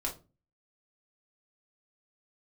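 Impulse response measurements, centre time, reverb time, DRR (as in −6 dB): 16 ms, 0.30 s, −2.5 dB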